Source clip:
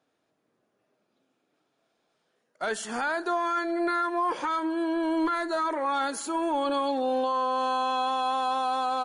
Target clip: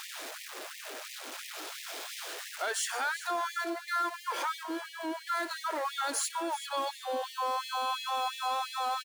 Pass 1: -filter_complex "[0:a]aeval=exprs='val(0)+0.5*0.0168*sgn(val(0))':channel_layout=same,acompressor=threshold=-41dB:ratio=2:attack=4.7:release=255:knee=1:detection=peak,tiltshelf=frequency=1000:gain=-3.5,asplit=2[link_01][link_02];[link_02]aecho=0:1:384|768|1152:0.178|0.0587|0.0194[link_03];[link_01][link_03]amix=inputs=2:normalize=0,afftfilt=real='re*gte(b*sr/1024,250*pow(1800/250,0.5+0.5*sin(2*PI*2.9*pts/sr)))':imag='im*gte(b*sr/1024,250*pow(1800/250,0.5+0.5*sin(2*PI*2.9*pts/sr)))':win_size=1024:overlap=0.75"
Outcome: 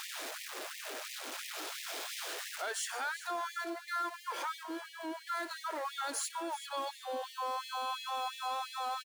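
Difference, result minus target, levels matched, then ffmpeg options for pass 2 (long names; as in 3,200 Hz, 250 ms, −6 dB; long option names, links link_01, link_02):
downward compressor: peak gain reduction +4.5 dB
-filter_complex "[0:a]aeval=exprs='val(0)+0.5*0.0168*sgn(val(0))':channel_layout=same,acompressor=threshold=-31.5dB:ratio=2:attack=4.7:release=255:knee=1:detection=peak,tiltshelf=frequency=1000:gain=-3.5,asplit=2[link_01][link_02];[link_02]aecho=0:1:384|768|1152:0.178|0.0587|0.0194[link_03];[link_01][link_03]amix=inputs=2:normalize=0,afftfilt=real='re*gte(b*sr/1024,250*pow(1800/250,0.5+0.5*sin(2*PI*2.9*pts/sr)))':imag='im*gte(b*sr/1024,250*pow(1800/250,0.5+0.5*sin(2*PI*2.9*pts/sr)))':win_size=1024:overlap=0.75"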